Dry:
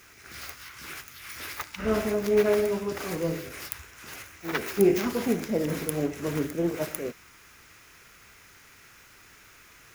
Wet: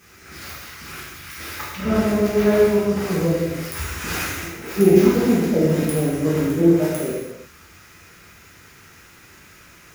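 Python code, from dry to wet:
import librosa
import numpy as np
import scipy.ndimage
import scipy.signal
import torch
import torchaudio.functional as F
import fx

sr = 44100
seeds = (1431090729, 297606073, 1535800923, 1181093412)

y = fx.peak_eq(x, sr, hz=170.0, db=7.5, octaves=2.7)
y = fx.over_compress(y, sr, threshold_db=-40.0, ratio=-1.0, at=(3.74, 4.72), fade=0.02)
y = fx.rev_gated(y, sr, seeds[0], gate_ms=380, shape='falling', drr_db=-7.5)
y = F.gain(torch.from_numpy(y), -3.0).numpy()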